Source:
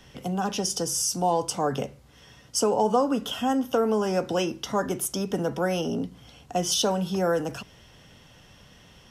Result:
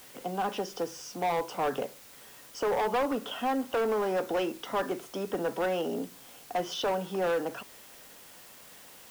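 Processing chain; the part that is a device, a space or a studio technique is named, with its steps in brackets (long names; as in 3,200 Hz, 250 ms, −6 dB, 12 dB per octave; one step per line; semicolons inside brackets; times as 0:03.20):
aircraft radio (band-pass filter 340–2,300 Hz; hard clipping −24.5 dBFS, distortion −10 dB; white noise bed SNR 20 dB)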